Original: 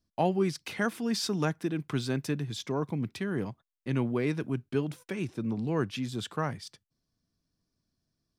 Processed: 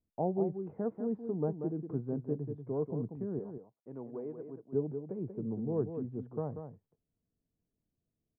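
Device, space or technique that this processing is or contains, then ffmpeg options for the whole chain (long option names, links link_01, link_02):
under water: -filter_complex "[0:a]asettb=1/sr,asplit=3[link_01][link_02][link_03];[link_01]atrim=end=3.394[link_04];[link_02]atrim=start=3.39:end=4.71,asetpts=PTS-STARTPTS,afade=type=in:duration=0.004:curve=qsin,afade=type=out:start_time=1.316:duration=0.004:curve=qsin,highpass=frequency=810:poles=1[link_05];[link_03]atrim=start=4.706[link_06];[link_04][link_05]acrossfade=duration=0.004:curve1=hsin:curve2=qsin[link_07];[link_07][link_06]acrossfade=duration=0.004:curve1=qsin:curve2=hsin,lowpass=frequency=790:width=0.5412,lowpass=frequency=790:width=1.3066,equalizer=frequency=450:width_type=o:width=0.22:gain=7.5,aecho=1:1:187:0.398,volume=-5.5dB"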